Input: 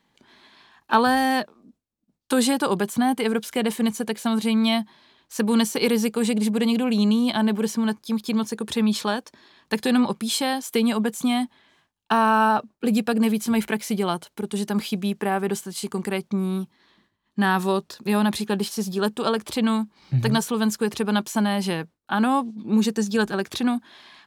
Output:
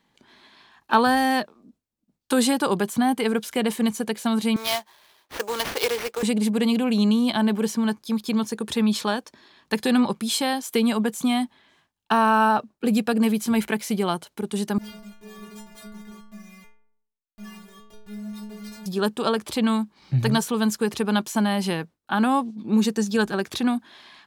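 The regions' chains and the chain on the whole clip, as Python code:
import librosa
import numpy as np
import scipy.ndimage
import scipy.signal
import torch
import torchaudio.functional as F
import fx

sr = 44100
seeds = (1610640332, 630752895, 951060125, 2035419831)

y = fx.chain(x, sr, fx.highpass(hz=440.0, slope=24),
    fx.sample_hold(seeds[0], rate_hz=7800.0, jitter_pct=20), at=(4.56, 6.23))
y = fx.chain(y, sr, fx.schmitt(flips_db=-31.5),
    fx.stiff_resonator(f0_hz=210.0, decay_s=0.68, stiffness=0.008),
    fx.tremolo_shape(shape='triangle', hz=1.9, depth_pct=35), at=(14.78, 18.86))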